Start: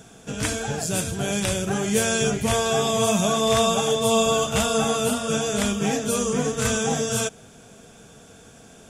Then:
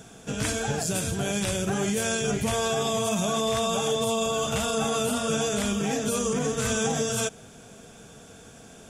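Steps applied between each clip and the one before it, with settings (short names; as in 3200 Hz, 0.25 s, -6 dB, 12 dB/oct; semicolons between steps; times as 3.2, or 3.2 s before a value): limiter -17 dBFS, peak gain reduction 9 dB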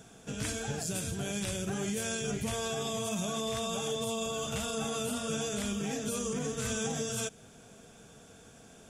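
dynamic EQ 860 Hz, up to -4 dB, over -40 dBFS, Q 0.74; gain -6.5 dB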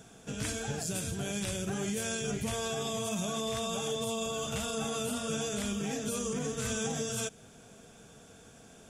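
nothing audible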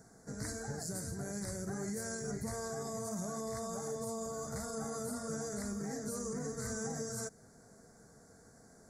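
elliptic band-stop 2000–4300 Hz, stop band 70 dB; gain -5 dB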